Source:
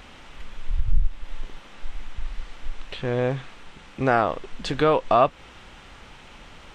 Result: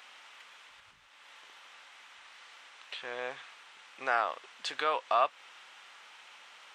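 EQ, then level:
high-pass filter 970 Hz 12 dB per octave
−4.0 dB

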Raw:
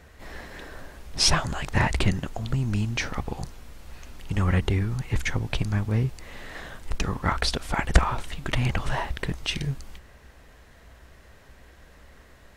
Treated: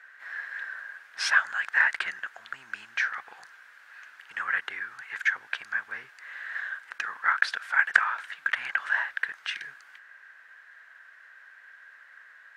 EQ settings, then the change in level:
high-pass with resonance 1,600 Hz, resonance Q 7.3
high-shelf EQ 2,200 Hz −12 dB
high-shelf EQ 8,500 Hz −4.5 dB
0.0 dB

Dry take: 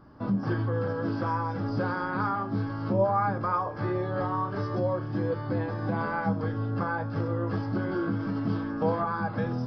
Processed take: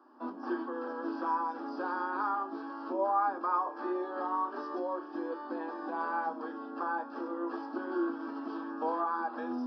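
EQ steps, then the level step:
Chebyshev high-pass with heavy ripple 240 Hz, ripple 9 dB
Butterworth band-reject 2,100 Hz, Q 5.6
0.0 dB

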